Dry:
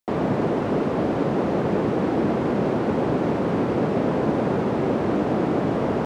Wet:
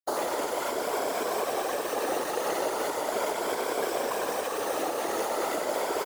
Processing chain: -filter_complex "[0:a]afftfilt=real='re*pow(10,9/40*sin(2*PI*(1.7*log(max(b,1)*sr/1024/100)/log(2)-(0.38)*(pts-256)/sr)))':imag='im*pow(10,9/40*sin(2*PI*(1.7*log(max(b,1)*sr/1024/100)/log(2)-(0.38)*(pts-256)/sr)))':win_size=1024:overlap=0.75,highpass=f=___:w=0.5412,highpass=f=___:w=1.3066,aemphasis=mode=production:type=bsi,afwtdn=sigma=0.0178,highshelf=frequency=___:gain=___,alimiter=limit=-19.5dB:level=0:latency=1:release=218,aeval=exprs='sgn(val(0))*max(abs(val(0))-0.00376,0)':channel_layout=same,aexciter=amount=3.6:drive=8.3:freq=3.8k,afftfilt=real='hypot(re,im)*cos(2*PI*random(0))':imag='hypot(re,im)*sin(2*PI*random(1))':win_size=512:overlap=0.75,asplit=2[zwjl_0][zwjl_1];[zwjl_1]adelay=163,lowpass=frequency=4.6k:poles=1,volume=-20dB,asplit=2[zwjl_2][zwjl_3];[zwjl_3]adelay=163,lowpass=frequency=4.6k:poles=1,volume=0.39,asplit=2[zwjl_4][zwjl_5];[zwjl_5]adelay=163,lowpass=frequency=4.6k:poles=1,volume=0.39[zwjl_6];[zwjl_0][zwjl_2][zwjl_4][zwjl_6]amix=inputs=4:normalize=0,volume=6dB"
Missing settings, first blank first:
430, 430, 4.2k, 10.5